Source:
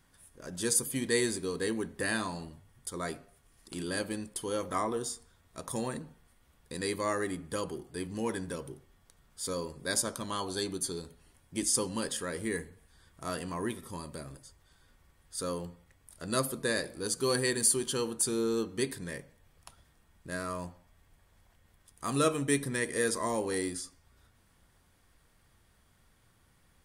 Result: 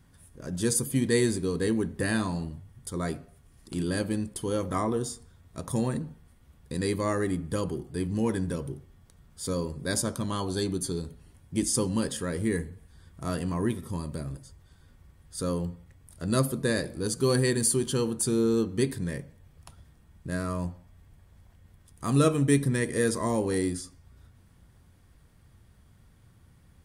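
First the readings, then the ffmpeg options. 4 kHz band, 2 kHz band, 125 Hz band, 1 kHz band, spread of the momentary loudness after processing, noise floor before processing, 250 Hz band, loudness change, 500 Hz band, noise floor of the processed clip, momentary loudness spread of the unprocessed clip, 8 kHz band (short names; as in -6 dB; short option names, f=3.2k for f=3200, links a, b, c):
0.0 dB, +0.5 dB, +11.5 dB, +1.0 dB, 14 LU, -67 dBFS, +7.5 dB, +4.0 dB, +4.0 dB, -59 dBFS, 16 LU, 0.0 dB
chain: -af "equalizer=f=97:w=0.34:g=12.5"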